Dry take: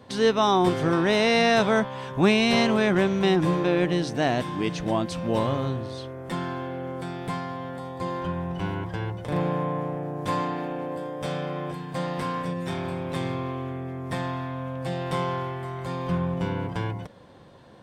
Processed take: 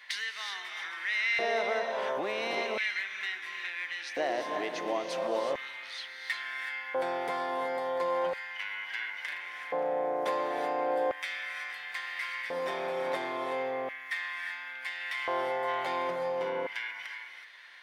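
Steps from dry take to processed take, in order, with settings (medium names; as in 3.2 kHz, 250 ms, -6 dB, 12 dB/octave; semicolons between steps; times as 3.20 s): graphic EQ with 31 bands 100 Hz -12 dB, 500 Hz -5 dB, 2 kHz +8 dB, 8 kHz -8 dB; compression 8:1, threshold -33 dBFS, peak gain reduction 18 dB; hard clipper -27.5 dBFS, distortion -28 dB; gated-style reverb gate 400 ms rising, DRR 4 dB; LFO high-pass square 0.36 Hz 520–2000 Hz; 15.67–16.07 s: peaking EQ 3 kHz +8.5 dB -> +1.5 dB 1.5 oct; trim +2 dB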